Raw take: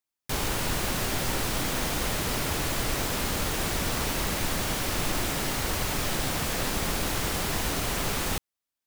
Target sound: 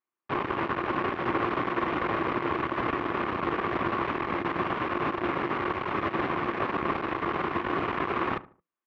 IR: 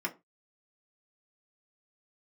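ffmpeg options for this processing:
-filter_complex "[0:a]aeval=exprs='max(val(0),0)':c=same,highpass=120,equalizer=f=150:t=q:w=4:g=-3,equalizer=f=350:t=q:w=4:g=9,equalizer=f=1100:t=q:w=4:g=10,lowpass=f=2400:w=0.5412,lowpass=f=2400:w=1.3066,asplit=2[s0][s1];[s1]adelay=74,lowpass=f=1400:p=1,volume=0.158,asplit=2[s2][s3];[s3]adelay=74,lowpass=f=1400:p=1,volume=0.36,asplit=2[s4][s5];[s5]adelay=74,lowpass=f=1400:p=1,volume=0.36[s6];[s0][s2][s4][s6]amix=inputs=4:normalize=0,asplit=2[s7][s8];[1:a]atrim=start_sample=2205[s9];[s8][s9]afir=irnorm=-1:irlink=0,volume=0.0841[s10];[s7][s10]amix=inputs=2:normalize=0,volume=1.58"

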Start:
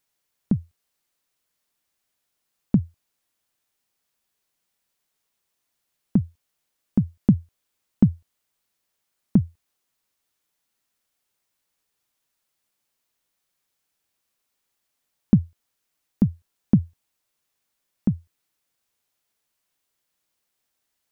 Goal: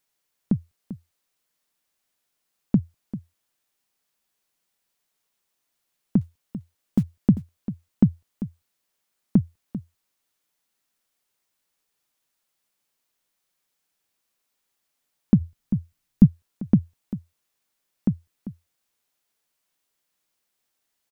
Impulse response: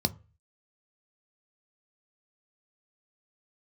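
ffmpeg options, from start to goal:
-filter_complex "[0:a]equalizer=f=74:t=o:w=1.1:g=-6,asettb=1/sr,asplit=3[s0][s1][s2];[s0]atrim=end=6.214[s3];[s1]atrim=start=6.21:end=7.03,asetpts=PTS-STARTPTS,afade=t=in:d=0.004:c=qsin,afade=t=out:st=0.816:d=0.004:c=qsin,acrusher=bits=8:mode=log:mix=0:aa=0.000001[s4];[s2]atrim=start=7.026[s5];[s3][s4]acrossfade=d=0.004:c1=hsin:c2=qsin[s6];[s6][s5]acrossfade=d=0.004:c1=qsin:c2=hsin,aecho=1:1:394:0.211,asplit=3[s7][s8][s9];[s7]afade=t=out:st=15.4:d=0.02[s10];[s8]asubboost=boost=5.5:cutoff=220,afade=t=in:st=15.4:d=0.02,afade=t=out:st=16.25:d=0.02[s11];[s9]afade=t=in:st=16.25:d=0.02[s12];[s10][s11][s12]amix=inputs=3:normalize=0"

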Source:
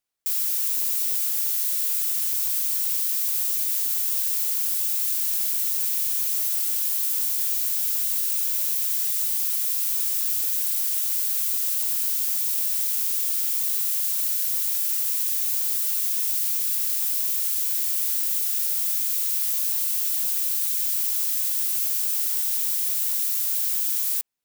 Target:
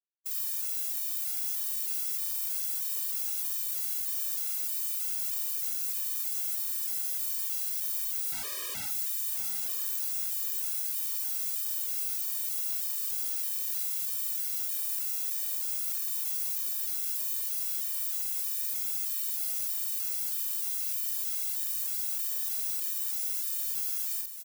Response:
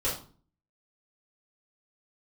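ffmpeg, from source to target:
-filter_complex "[0:a]lowshelf=f=540:t=q:w=3:g=-8.5,asoftclip=type=hard:threshold=0.168,acrusher=bits=7:mix=0:aa=0.000001,asettb=1/sr,asplit=3[s0][s1][s2];[s0]atrim=end=8.324[s3];[s1]atrim=start=8.32:end=8.86,asetpts=PTS-STARTPTS,afade=t=in:d=0.004:c=qsin,afade=t=out:st=0.536:d=0.004:c=qsin,aeval=exprs='(mod(15*val(0)+1,2)-1)/15':c=same[s4];[s2]atrim=start=8.856[s5];[s3][s4]acrossfade=d=0.004:c1=hsin:c2=qsin[s6];[s6][s5]acrossfade=d=0.004:c1=qsin:c2=hsin,asplit=2[s7][s8];[s8]adelay=48,volume=0.75[s9];[s7][s9]amix=inputs=2:normalize=0,aecho=1:1:1002:0.355,asplit=2[s10][s11];[1:a]atrim=start_sample=2205,adelay=28[s12];[s11][s12]afir=irnorm=-1:irlink=0,volume=0.0422[s13];[s10][s13]amix=inputs=2:normalize=0,afftfilt=real='re*gt(sin(2*PI*1.6*pts/sr)*(1-2*mod(floor(b*sr/1024/320),2)),0)':imag='im*gt(sin(2*PI*1.6*pts/sr)*(1-2*mod(floor(b*sr/1024/320),2)),0)':win_size=1024:overlap=0.75,volume=0.447"

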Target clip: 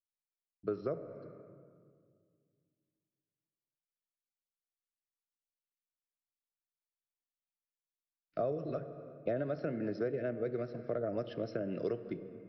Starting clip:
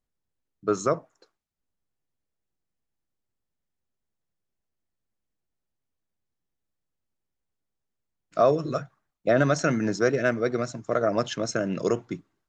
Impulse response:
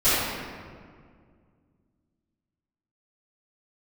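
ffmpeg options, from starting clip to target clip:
-filter_complex "[0:a]agate=range=0.0224:threshold=0.00447:ratio=3:detection=peak,equalizer=f=250:t=o:w=1:g=-5,equalizer=f=1000:t=o:w=1:g=-12,equalizer=f=4000:t=o:w=1:g=-8,aresample=11025,aresample=44100,asplit=2[s0][s1];[1:a]atrim=start_sample=2205[s2];[s1][s2]afir=irnorm=-1:irlink=0,volume=0.0237[s3];[s0][s3]amix=inputs=2:normalize=0,acrossover=split=260|860[s4][s5][s6];[s4]acompressor=threshold=0.00501:ratio=4[s7];[s5]acompressor=threshold=0.02:ratio=4[s8];[s6]acompressor=threshold=0.002:ratio=4[s9];[s7][s8][s9]amix=inputs=3:normalize=0"

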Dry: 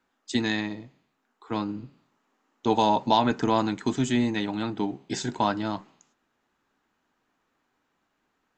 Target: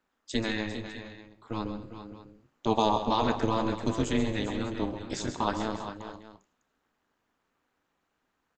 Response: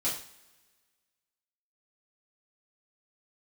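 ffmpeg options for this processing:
-af "tremolo=f=220:d=0.919,aecho=1:1:131|142|212|400|430|602:0.299|0.141|0.1|0.282|0.126|0.141"

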